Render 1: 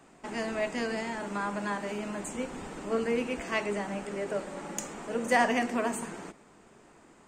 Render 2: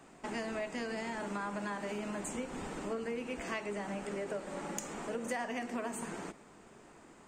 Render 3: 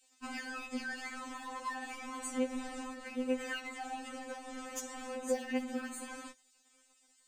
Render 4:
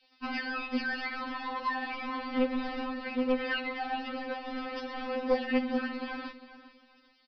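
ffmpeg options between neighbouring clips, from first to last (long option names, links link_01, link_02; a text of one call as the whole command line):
ffmpeg -i in.wav -af "acompressor=threshold=-35dB:ratio=6" out.wav
ffmpeg -i in.wav -filter_complex "[0:a]acrossover=split=3300[link_01][link_02];[link_01]aeval=exprs='sgn(val(0))*max(abs(val(0))-0.00282,0)':channel_layout=same[link_03];[link_03][link_02]amix=inputs=2:normalize=0,afftfilt=real='re*3.46*eq(mod(b,12),0)':imag='im*3.46*eq(mod(b,12),0)':win_size=2048:overlap=0.75,volume=3.5dB" out.wav
ffmpeg -i in.wav -af "aresample=11025,aeval=exprs='clip(val(0),-1,0.0282)':channel_layout=same,aresample=44100,aecho=1:1:402|804|1206:0.188|0.0471|0.0118,volume=7.5dB" out.wav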